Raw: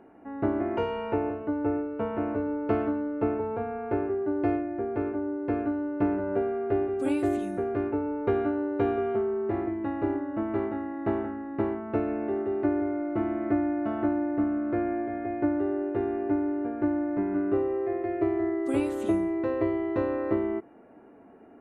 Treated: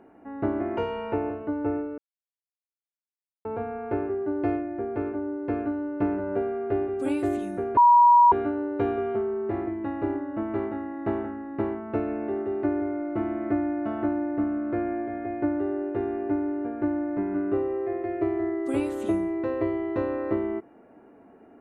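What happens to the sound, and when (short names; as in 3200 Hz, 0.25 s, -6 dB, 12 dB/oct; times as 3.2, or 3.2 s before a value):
1.98–3.45 mute
7.77–8.32 bleep 961 Hz -12 dBFS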